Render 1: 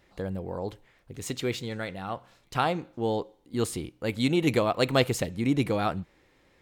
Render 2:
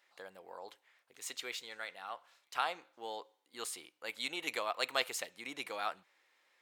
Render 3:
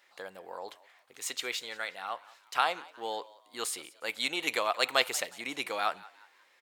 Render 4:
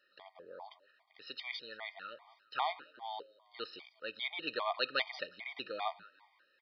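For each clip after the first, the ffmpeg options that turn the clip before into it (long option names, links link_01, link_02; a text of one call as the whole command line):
ffmpeg -i in.wav -af "highpass=930,volume=-5dB" out.wav
ffmpeg -i in.wav -filter_complex "[0:a]asplit=4[link_01][link_02][link_03][link_04];[link_02]adelay=180,afreqshift=95,volume=-21dB[link_05];[link_03]adelay=360,afreqshift=190,volume=-29dB[link_06];[link_04]adelay=540,afreqshift=285,volume=-36.9dB[link_07];[link_01][link_05][link_06][link_07]amix=inputs=4:normalize=0,volume=7dB" out.wav
ffmpeg -i in.wav -af "aresample=11025,aresample=44100,afftfilt=real='re*gt(sin(2*PI*2.5*pts/sr)*(1-2*mod(floor(b*sr/1024/620),2)),0)':imag='im*gt(sin(2*PI*2.5*pts/sr)*(1-2*mod(floor(b*sr/1024/620),2)),0)':win_size=1024:overlap=0.75,volume=-4dB" out.wav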